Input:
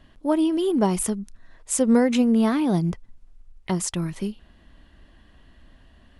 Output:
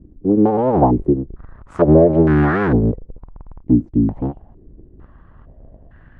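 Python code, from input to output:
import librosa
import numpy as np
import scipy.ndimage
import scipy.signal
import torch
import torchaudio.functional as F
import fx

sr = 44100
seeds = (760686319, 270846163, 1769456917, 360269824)

y = fx.cycle_switch(x, sr, every=3, mode='inverted')
y = fx.low_shelf(y, sr, hz=250.0, db=9.0)
y = fx.filter_held_lowpass(y, sr, hz=2.2, low_hz=300.0, high_hz=1600.0)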